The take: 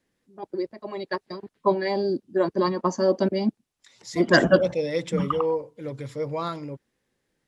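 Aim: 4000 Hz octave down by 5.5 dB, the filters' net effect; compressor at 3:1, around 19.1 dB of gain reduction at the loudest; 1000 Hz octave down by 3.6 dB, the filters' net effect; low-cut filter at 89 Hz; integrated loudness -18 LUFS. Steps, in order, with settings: HPF 89 Hz; bell 1000 Hz -4 dB; bell 4000 Hz -7 dB; compressor 3:1, threshold -40 dBFS; gain +22.5 dB

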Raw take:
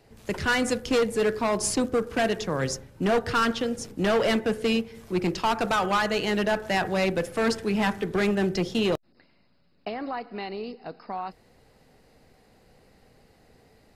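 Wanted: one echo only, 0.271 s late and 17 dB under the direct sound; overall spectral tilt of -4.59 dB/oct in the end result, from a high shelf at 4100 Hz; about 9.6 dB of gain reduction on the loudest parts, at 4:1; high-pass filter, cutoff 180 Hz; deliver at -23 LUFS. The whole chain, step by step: HPF 180 Hz; high shelf 4100 Hz -8 dB; compressor 4:1, threshold -32 dBFS; echo 0.271 s -17 dB; gain +12.5 dB

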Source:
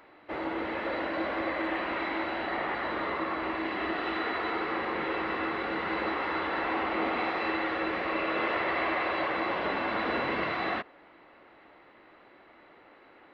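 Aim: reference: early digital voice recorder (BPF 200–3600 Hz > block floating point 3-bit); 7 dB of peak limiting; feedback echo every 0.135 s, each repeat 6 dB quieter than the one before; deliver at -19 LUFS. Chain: limiter -24.5 dBFS; BPF 200–3600 Hz; feedback echo 0.135 s, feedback 50%, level -6 dB; block floating point 3-bit; gain +12.5 dB

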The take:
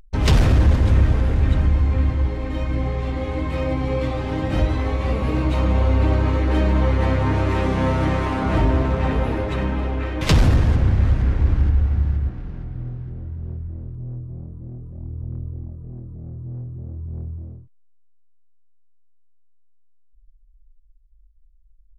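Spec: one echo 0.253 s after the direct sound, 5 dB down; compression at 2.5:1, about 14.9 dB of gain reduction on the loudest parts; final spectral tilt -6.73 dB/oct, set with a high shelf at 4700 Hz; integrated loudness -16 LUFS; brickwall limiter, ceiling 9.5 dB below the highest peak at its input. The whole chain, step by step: high shelf 4700 Hz +8.5 dB; compressor 2.5:1, threshold -35 dBFS; limiter -25.5 dBFS; echo 0.253 s -5 dB; gain +18.5 dB

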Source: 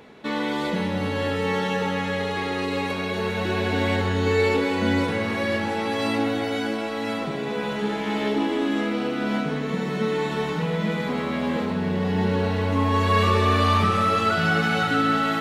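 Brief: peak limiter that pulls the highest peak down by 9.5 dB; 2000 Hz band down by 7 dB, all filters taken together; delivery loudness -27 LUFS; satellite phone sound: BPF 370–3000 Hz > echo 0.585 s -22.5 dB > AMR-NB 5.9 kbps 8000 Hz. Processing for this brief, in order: bell 2000 Hz -9 dB; limiter -19 dBFS; BPF 370–3000 Hz; echo 0.585 s -22.5 dB; gain +6.5 dB; AMR-NB 5.9 kbps 8000 Hz

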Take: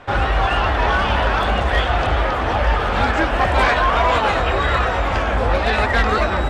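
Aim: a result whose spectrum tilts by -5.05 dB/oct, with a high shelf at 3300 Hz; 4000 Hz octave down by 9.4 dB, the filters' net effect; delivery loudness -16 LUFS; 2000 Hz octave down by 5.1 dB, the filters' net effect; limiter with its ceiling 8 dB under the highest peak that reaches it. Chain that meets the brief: bell 2000 Hz -4 dB; high shelf 3300 Hz -4 dB; bell 4000 Hz -8.5 dB; gain +9 dB; limiter -7 dBFS

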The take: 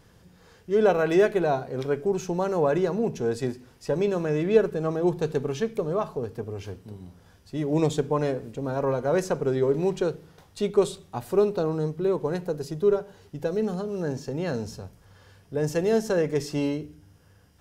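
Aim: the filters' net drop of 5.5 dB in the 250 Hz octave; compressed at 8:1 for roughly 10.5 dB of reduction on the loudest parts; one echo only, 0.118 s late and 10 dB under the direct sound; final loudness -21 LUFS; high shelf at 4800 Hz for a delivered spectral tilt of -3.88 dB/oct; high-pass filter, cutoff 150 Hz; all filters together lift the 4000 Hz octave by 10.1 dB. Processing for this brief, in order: HPF 150 Hz; bell 250 Hz -8 dB; bell 4000 Hz +8 dB; high shelf 4800 Hz +9 dB; compressor 8:1, threshold -28 dBFS; echo 0.118 s -10 dB; gain +12 dB

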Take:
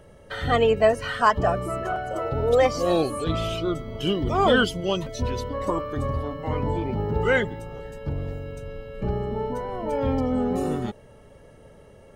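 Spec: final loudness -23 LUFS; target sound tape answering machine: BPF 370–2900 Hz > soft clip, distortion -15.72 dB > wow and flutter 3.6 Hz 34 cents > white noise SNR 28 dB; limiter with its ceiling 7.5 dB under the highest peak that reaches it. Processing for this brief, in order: limiter -13 dBFS; BPF 370–2900 Hz; soft clip -19.5 dBFS; wow and flutter 3.6 Hz 34 cents; white noise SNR 28 dB; gain +7 dB

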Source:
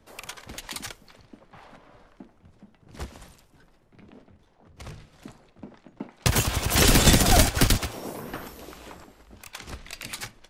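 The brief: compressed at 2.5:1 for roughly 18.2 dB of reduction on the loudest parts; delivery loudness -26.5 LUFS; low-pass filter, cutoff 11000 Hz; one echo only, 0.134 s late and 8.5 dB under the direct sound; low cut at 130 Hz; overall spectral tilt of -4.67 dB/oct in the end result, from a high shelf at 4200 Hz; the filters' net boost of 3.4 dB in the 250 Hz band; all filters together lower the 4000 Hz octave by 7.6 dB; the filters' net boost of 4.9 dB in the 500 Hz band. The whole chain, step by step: HPF 130 Hz; LPF 11000 Hz; bell 250 Hz +3.5 dB; bell 500 Hz +5.5 dB; bell 4000 Hz -6.5 dB; high shelf 4200 Hz -6 dB; compressor 2.5:1, threshold -43 dBFS; echo 0.134 s -8.5 dB; gain +16.5 dB

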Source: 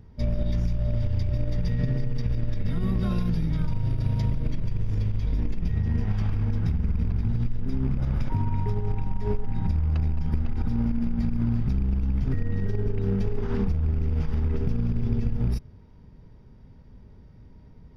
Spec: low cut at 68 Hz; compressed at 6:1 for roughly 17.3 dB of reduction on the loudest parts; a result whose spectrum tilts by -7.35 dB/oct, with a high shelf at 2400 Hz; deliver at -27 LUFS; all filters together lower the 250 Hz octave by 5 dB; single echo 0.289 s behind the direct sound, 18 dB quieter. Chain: HPF 68 Hz; bell 250 Hz -7 dB; high shelf 2400 Hz +7.5 dB; compressor 6:1, threshold -43 dBFS; echo 0.289 s -18 dB; gain +19.5 dB

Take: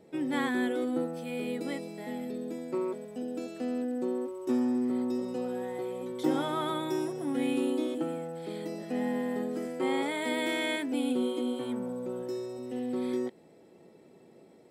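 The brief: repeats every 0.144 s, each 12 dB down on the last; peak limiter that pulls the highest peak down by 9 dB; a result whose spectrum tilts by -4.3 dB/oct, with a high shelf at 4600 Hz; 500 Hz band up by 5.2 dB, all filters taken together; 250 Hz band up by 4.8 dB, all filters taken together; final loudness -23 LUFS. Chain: bell 250 Hz +4 dB; bell 500 Hz +5 dB; high shelf 4600 Hz +8.5 dB; limiter -20 dBFS; feedback echo 0.144 s, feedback 25%, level -12 dB; gain +6.5 dB

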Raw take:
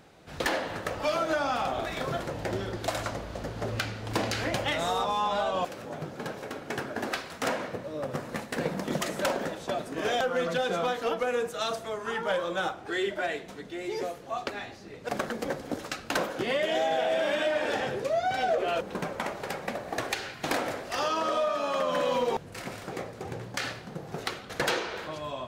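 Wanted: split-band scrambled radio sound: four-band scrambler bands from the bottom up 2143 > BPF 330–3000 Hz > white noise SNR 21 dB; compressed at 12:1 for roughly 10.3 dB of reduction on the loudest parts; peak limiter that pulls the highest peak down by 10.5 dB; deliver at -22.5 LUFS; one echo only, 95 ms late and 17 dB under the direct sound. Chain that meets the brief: compressor 12:1, threshold -34 dBFS; limiter -31.5 dBFS; echo 95 ms -17 dB; four-band scrambler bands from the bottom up 2143; BPF 330–3000 Hz; white noise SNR 21 dB; gain +17 dB

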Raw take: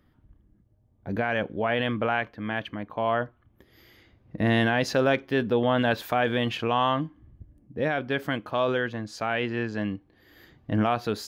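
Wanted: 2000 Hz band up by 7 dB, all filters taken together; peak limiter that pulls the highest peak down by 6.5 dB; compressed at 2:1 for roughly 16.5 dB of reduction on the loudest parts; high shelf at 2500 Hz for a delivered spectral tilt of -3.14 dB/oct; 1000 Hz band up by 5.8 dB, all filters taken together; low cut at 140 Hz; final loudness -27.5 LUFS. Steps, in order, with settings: HPF 140 Hz; bell 1000 Hz +6.5 dB; bell 2000 Hz +9 dB; high shelf 2500 Hz -5.5 dB; compressor 2:1, threshold -46 dBFS; gain +12 dB; limiter -13.5 dBFS

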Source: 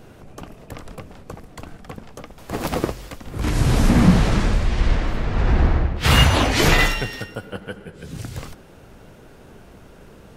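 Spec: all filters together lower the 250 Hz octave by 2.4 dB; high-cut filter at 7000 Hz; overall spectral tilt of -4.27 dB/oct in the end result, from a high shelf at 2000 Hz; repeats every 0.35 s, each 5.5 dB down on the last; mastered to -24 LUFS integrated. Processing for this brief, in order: LPF 7000 Hz; bell 250 Hz -3.5 dB; high shelf 2000 Hz +5.5 dB; feedback echo 0.35 s, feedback 53%, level -5.5 dB; gain -6 dB

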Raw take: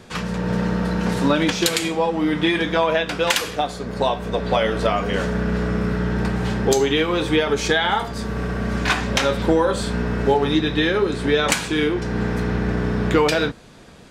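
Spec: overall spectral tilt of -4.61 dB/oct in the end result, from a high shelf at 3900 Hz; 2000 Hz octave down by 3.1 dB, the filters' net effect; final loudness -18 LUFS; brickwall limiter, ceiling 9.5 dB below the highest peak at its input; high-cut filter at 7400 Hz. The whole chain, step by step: LPF 7400 Hz; bell 2000 Hz -5 dB; high shelf 3900 Hz +4 dB; gain +5 dB; limiter -8 dBFS

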